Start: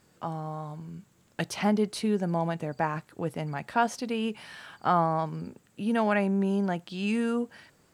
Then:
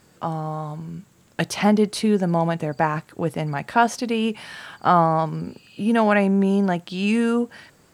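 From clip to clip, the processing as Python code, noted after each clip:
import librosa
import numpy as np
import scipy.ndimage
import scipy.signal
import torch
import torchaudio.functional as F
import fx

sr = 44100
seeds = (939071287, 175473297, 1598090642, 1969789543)

y = fx.spec_repair(x, sr, seeds[0], start_s=5.47, length_s=0.39, low_hz=2400.0, high_hz=5200.0, source='both')
y = y * 10.0 ** (7.5 / 20.0)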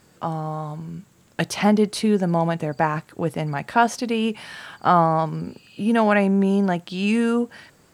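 y = x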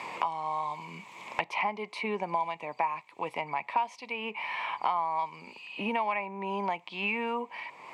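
y = fx.double_bandpass(x, sr, hz=1500.0, octaves=1.2)
y = fx.band_squash(y, sr, depth_pct=100)
y = y * 10.0 ** (1.5 / 20.0)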